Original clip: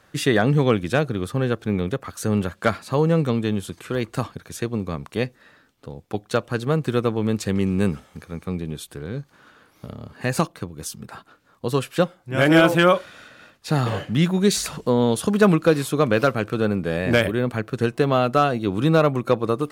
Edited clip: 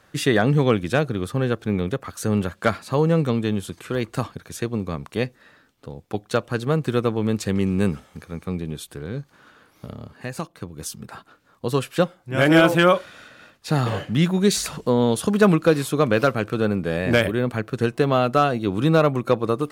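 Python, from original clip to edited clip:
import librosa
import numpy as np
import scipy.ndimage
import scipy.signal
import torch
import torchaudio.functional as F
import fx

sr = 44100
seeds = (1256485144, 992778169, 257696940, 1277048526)

y = fx.edit(x, sr, fx.fade_down_up(start_s=10.01, length_s=0.75, db=-9.0, fade_s=0.29), tone=tone)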